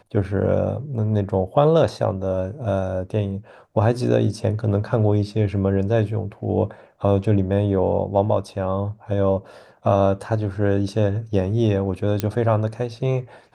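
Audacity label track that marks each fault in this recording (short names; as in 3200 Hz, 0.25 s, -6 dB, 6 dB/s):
12.200000	12.200000	pop -7 dBFS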